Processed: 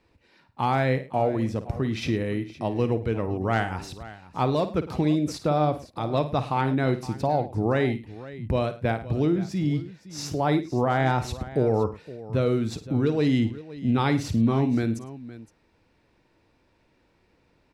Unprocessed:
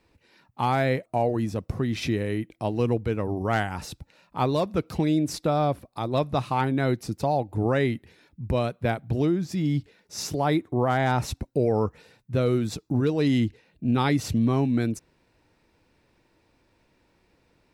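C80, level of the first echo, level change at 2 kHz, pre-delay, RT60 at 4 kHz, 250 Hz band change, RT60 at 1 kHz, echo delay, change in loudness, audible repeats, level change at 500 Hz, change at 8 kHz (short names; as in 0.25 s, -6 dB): none, -12.0 dB, 0.0 dB, none, none, +0.5 dB, none, 53 ms, 0.0 dB, 3, +0.5 dB, -3.5 dB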